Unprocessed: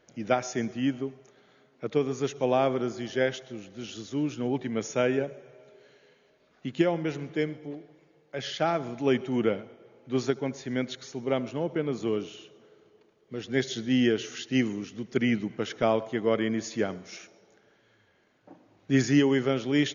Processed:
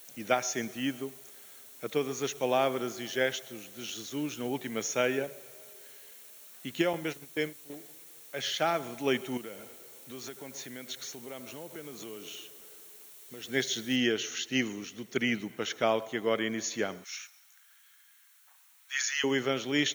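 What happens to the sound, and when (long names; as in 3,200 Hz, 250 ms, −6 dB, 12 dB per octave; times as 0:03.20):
0:06.93–0:07.70: noise gate −34 dBFS, range −15 dB
0:09.37–0:13.45: downward compressor 4 to 1, threshold −37 dBFS
0:13.96: noise floor change −59 dB −69 dB
0:17.04–0:19.24: inverse Chebyshev high-pass filter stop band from 420 Hz, stop band 50 dB
whole clip: spectral tilt +2.5 dB per octave; notch filter 4,900 Hz, Q 8.3; level −1 dB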